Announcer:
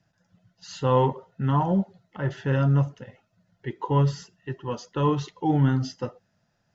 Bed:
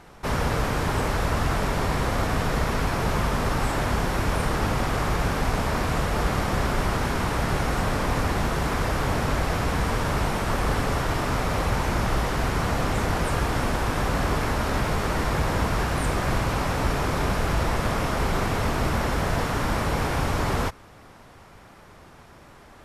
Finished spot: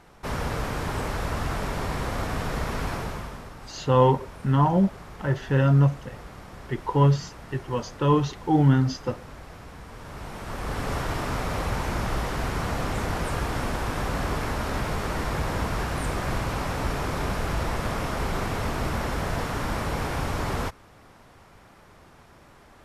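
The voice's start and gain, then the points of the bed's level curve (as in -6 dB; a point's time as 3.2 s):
3.05 s, +2.5 dB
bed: 2.93 s -4.5 dB
3.53 s -18.5 dB
9.88 s -18.5 dB
10.93 s -3.5 dB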